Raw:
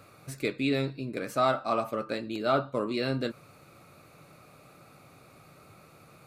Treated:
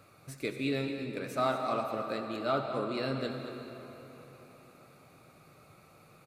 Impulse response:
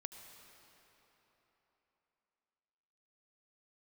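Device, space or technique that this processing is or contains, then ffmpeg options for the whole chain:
cave: -filter_complex "[0:a]aecho=1:1:223:0.251[a];[1:a]atrim=start_sample=2205[b];[a][b]afir=irnorm=-1:irlink=0"

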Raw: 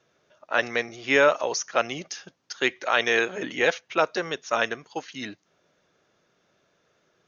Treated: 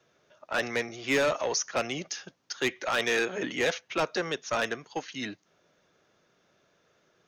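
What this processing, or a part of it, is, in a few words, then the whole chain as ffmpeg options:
one-band saturation: -filter_complex "[0:a]acrossover=split=260|4000[a][b][c];[b]asoftclip=type=tanh:threshold=-23dB[d];[a][d][c]amix=inputs=3:normalize=0"

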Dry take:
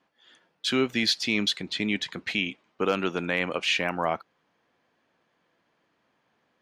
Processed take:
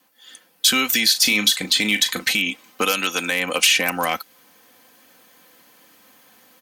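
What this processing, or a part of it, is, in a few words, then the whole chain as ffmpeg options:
FM broadcast chain: -filter_complex "[0:a]highpass=f=53:w=0.5412,highpass=f=53:w=1.3066,dynaudnorm=f=470:g=3:m=9dB,acrossover=split=620|1700[a][b][c];[a]acompressor=threshold=-32dB:ratio=4[d];[b]acompressor=threshold=-32dB:ratio=4[e];[c]acompressor=threshold=-26dB:ratio=4[f];[d][e][f]amix=inputs=3:normalize=0,aemphasis=mode=production:type=50fm,alimiter=limit=-14dB:level=0:latency=1:release=199,asoftclip=type=hard:threshold=-16.5dB,lowpass=f=15k:w=0.5412,lowpass=f=15k:w=1.3066,aemphasis=mode=production:type=50fm,asplit=3[g][h][i];[g]afade=t=out:st=1.13:d=0.02[j];[h]asplit=2[k][l];[l]adelay=38,volume=-10dB[m];[k][m]amix=inputs=2:normalize=0,afade=t=in:st=1.13:d=0.02,afade=t=out:st=2.24:d=0.02[n];[i]afade=t=in:st=2.24:d=0.02[o];[j][n][o]amix=inputs=3:normalize=0,asettb=1/sr,asplit=3[p][q][r];[p]atrim=end=2.914[s];[q]atrim=start=2.91:end=3.32,asetpts=PTS-STARTPTS,afade=t=in:d=0.004:c=qsin,afade=t=out:st=0.406:d=0.004:c=qsin,highpass=f=210:p=1[t];[r]atrim=start=3.316[u];[s][t]acrossfade=d=0.004:c1=hsin:c2=qsin[v];[v][u]acrossfade=d=0.004:c1=qsin:c2=hsin,aecho=1:1:3.9:0.57,volume=4.5dB"

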